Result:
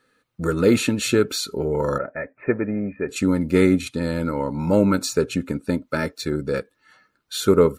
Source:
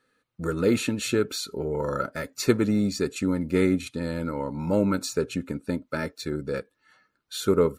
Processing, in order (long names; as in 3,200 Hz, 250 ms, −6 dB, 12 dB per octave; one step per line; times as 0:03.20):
0:01.98–0:03.09: Chebyshev low-pass with heavy ripple 2,500 Hz, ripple 9 dB
level +5.5 dB